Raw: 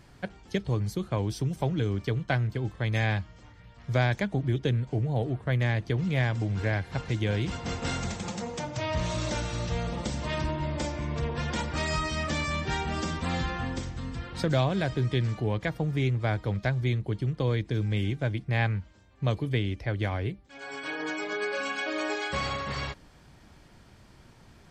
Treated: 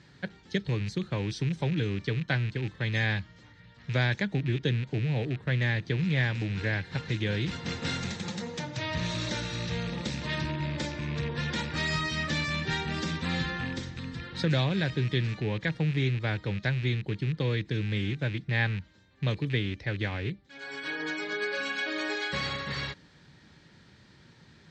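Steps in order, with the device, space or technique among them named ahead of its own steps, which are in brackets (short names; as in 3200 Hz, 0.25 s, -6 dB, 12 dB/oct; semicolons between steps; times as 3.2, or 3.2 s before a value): car door speaker with a rattle (rattling part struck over -30 dBFS, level -31 dBFS; speaker cabinet 90–7100 Hz, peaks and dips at 160 Hz +5 dB, 690 Hz -8 dB, 1100 Hz -4 dB, 1800 Hz +6 dB, 3900 Hz +8 dB); gain -1.5 dB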